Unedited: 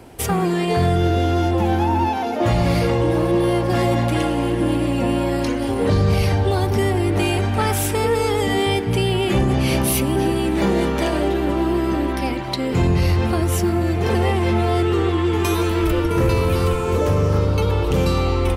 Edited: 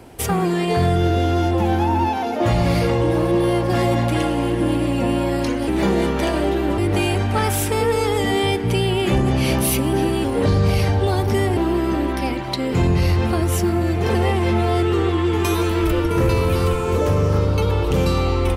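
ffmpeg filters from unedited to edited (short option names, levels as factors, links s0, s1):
-filter_complex "[0:a]asplit=5[s0][s1][s2][s3][s4];[s0]atrim=end=5.682[s5];[s1]atrim=start=10.468:end=11.572[s6];[s2]atrim=start=7.008:end=10.472[s7];[s3]atrim=start=5.678:end=7.012[s8];[s4]atrim=start=11.568[s9];[s5][s6]acrossfade=d=0.004:c1=hsin:c2=hsin[s10];[s10][s7]acrossfade=d=0.004:c1=hsin:c2=hsin[s11];[s11][s8]acrossfade=d=0.004:c1=hsin:c2=hsin[s12];[s12][s9]acrossfade=d=0.004:c1=hsin:c2=hsin"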